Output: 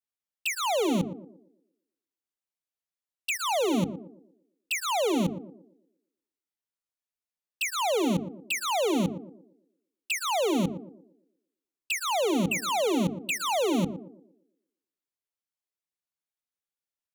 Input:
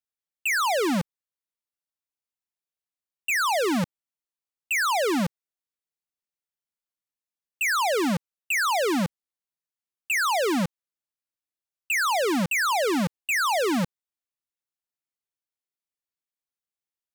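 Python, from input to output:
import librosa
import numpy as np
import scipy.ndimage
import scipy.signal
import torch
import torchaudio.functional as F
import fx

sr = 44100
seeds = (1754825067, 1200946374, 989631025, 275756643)

y = fx.env_flanger(x, sr, rest_ms=11.8, full_db=-24.5)
y = fx.hum_notches(y, sr, base_hz=50, count=8)
y = fx.echo_banded(y, sr, ms=117, feedback_pct=45, hz=370.0, wet_db=-9.5)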